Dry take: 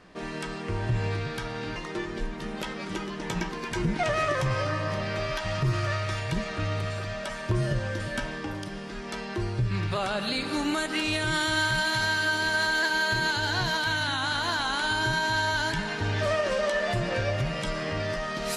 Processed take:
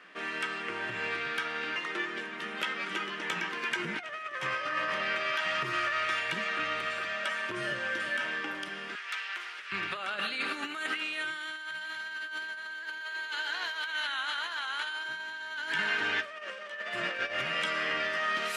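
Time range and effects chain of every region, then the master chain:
8.95–9.72 HPF 1300 Hz + Doppler distortion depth 0.27 ms
13.01–15.09 HPF 430 Hz + notch 1500 Hz, Q 24
whole clip: Bessel high-pass 300 Hz, order 4; negative-ratio compressor -32 dBFS, ratio -0.5; band shelf 2000 Hz +10.5 dB; gain -7.5 dB

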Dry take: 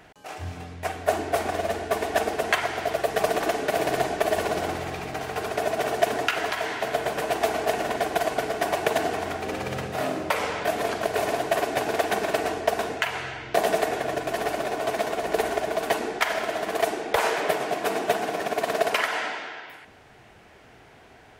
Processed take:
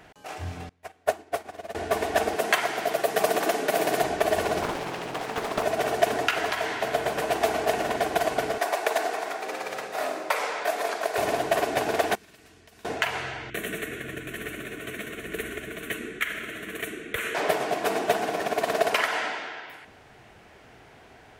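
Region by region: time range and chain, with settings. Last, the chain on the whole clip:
0.69–1.75 low shelf 110 Hz -8 dB + upward expander 2.5:1, over -35 dBFS
2.36–4.03 HPF 150 Hz 24 dB/oct + high shelf 9100 Hz +7.5 dB
4.62–5.63 HPF 140 Hz 24 dB/oct + Doppler distortion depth 0.93 ms
8.58–11.18 HPF 490 Hz + bell 3000 Hz -4.5 dB 0.28 oct
12.15–12.85 passive tone stack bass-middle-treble 6-0-2 + compressor 4:1, threshold -49 dBFS
13.5–17.35 bell 680 Hz -11.5 dB 1.1 oct + fixed phaser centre 2100 Hz, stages 4
whole clip: dry

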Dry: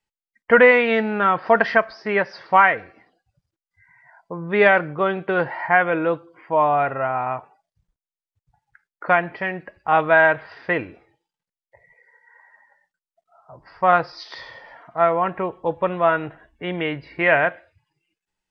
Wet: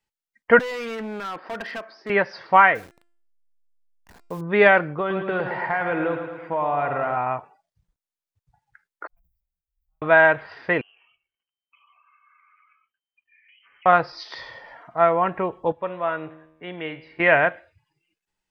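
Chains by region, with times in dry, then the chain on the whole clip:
0.59–2.1 compressor 3:1, threshold -16 dBFS + ladder high-pass 200 Hz, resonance 35% + hard clip -27.5 dBFS
2.75–4.41 level-crossing sampler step -42.5 dBFS + de-hum 345.2 Hz, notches 28
4.99–7.17 compressor 4:1, threshold -21 dBFS + feedback echo 0.11 s, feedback 59%, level -7.5 dB
9.07–10.02 inverse Chebyshev band-stop 190–3700 Hz, stop band 80 dB + sustainer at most 75 dB/s
10.81–13.86 compressor, threshold -53 dBFS + air absorption 270 m + inverted band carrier 3100 Hz
15.72–17.2 low shelf 120 Hz -10 dB + resonator 79 Hz, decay 0.89 s
whole clip: dry

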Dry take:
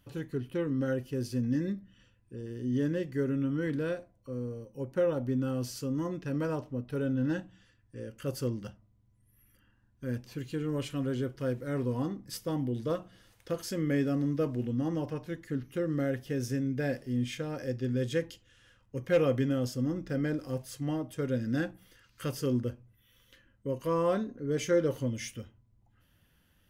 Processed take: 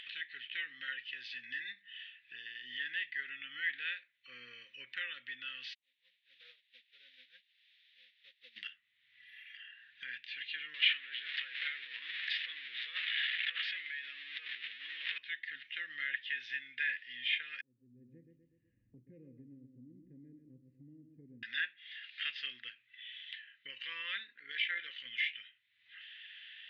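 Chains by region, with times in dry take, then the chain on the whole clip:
5.73–8.56 double band-pass 330 Hz, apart 1.2 oct + added noise blue -54 dBFS + upward expander 2.5:1, over -51 dBFS
10.74–15.18 zero-crossing step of -36 dBFS + negative-ratio compressor -34 dBFS + HPF 320 Hz
17.61–21.43 inverse Chebyshev low-pass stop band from 1300 Hz, stop band 70 dB + feedback echo 0.123 s, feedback 31%, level -8.5 dB
24.39–25.06 low shelf 150 Hz -6.5 dB + AM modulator 57 Hz, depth 30%
whole clip: elliptic band-pass 1800–3700 Hz, stop band 50 dB; treble ducked by the level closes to 2800 Hz, closed at -44 dBFS; upward compressor, threshold -53 dBFS; gain +13 dB

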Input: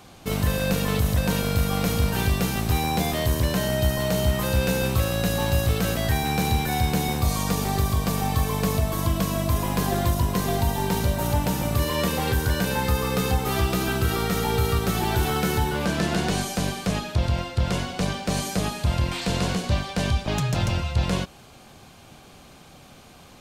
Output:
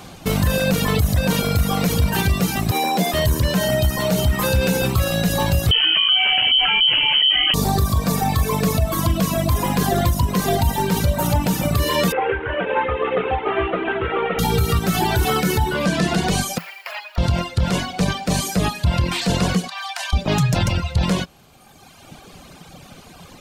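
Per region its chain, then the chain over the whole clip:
2.71–3.14 elliptic high-pass 180 Hz + bell 590 Hz +6 dB 0.21 oct
5.71–7.54 resonant low shelf 120 Hz +10 dB, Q 1.5 + inverted band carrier 3100 Hz + fast leveller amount 50%
12.12–14.39 CVSD 16 kbps + resonant low shelf 270 Hz -12.5 dB, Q 1.5
16.58–17.18 minimum comb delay 0.4 ms + HPF 780 Hz 24 dB/oct + bell 7800 Hz -14.5 dB 1.5 oct
19.68–20.13 compressor 2:1, threshold -24 dBFS + steep high-pass 680 Hz 72 dB/oct
whole clip: reverb removal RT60 1.7 s; bell 170 Hz +5.5 dB 0.21 oct; limiter -18 dBFS; gain +9 dB

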